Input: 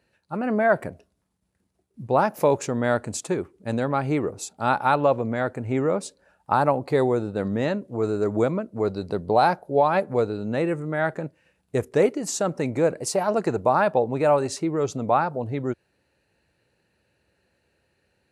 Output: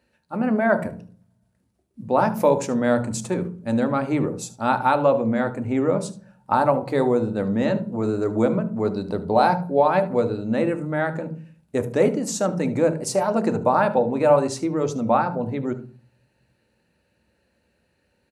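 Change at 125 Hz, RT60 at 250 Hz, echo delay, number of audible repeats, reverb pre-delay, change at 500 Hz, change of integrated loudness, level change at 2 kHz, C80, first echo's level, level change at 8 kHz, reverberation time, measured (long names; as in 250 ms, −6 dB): +1.5 dB, 0.70 s, 74 ms, 1, 3 ms, +1.5 dB, +2.0 dB, 0.0 dB, 19.5 dB, −17.0 dB, 0.0 dB, 0.40 s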